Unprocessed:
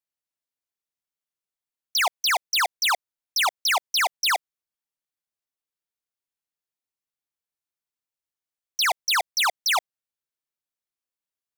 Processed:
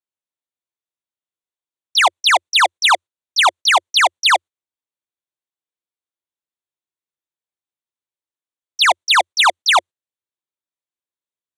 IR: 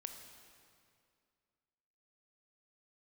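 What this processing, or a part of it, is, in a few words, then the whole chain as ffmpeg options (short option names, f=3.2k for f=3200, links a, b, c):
car door speaker: -af "highpass=84,equalizer=f=89:t=q:w=4:g=8,equalizer=f=350:t=q:w=4:g=7,equalizer=f=550:t=q:w=4:g=4,equalizer=f=990:t=q:w=4:g=4,equalizer=f=3.6k:t=q:w=4:g=5,equalizer=f=5.1k:t=q:w=4:g=-10,lowpass=f=9.3k:w=0.5412,lowpass=f=9.3k:w=1.3066,agate=range=-12dB:threshold=-36dB:ratio=16:detection=peak,volume=8dB"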